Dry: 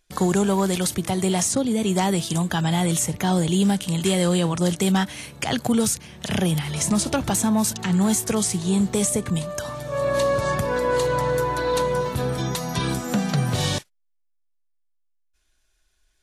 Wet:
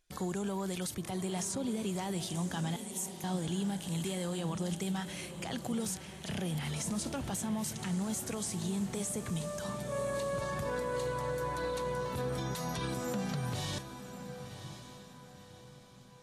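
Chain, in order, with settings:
brickwall limiter −20 dBFS, peak gain reduction 8.5 dB
0:02.76–0:03.24: first difference
feedback delay with all-pass diffusion 1,052 ms, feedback 42%, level −10 dB
level −8 dB

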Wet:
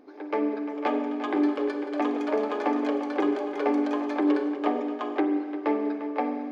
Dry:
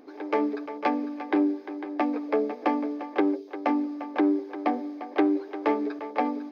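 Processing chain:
high-shelf EQ 4,300 Hz −6 dB
spring reverb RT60 1.9 s, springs 41/47 ms, chirp 55 ms, DRR 6 dB
delay with pitch and tempo change per echo 636 ms, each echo +6 semitones, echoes 3, each echo −6 dB
level −2.5 dB

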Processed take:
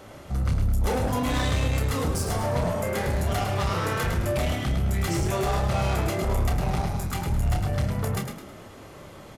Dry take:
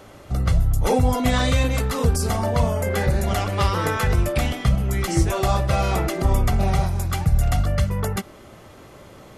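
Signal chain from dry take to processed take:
soft clipping −22 dBFS, distortion −9 dB
double-tracking delay 29 ms −7 dB
echo with shifted repeats 106 ms, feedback 37%, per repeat +33 Hz, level −6.5 dB
level −1.5 dB

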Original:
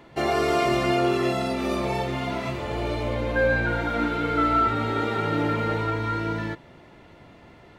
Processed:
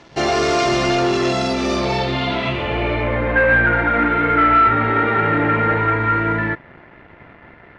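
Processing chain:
leveller curve on the samples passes 2
low-pass filter sweep 5,900 Hz → 1,900 Hz, 0:01.68–0:03.18

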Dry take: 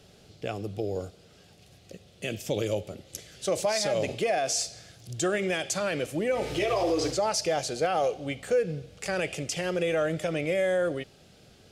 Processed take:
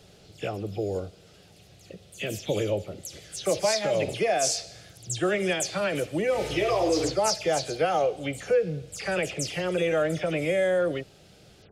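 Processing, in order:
every frequency bin delayed by itself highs early, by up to 100 ms
level +2 dB

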